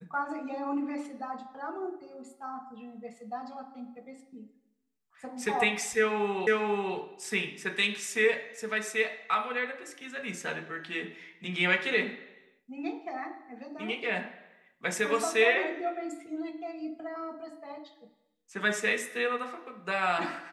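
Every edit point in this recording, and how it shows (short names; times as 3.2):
6.47 repeat of the last 0.49 s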